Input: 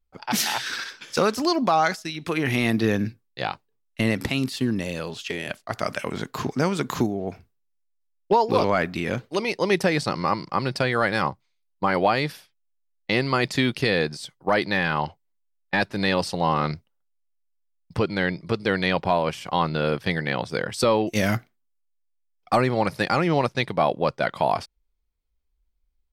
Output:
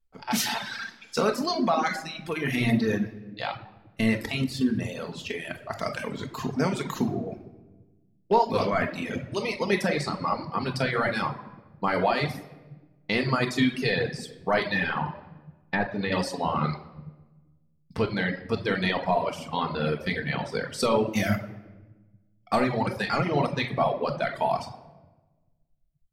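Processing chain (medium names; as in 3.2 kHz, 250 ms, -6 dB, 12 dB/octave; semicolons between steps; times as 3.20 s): simulated room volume 880 m³, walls mixed, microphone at 1.6 m; reverb removal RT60 1.6 s; 14.97–16.12 s: low-pass that closes with the level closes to 1.5 kHz, closed at -17.5 dBFS; trim -4.5 dB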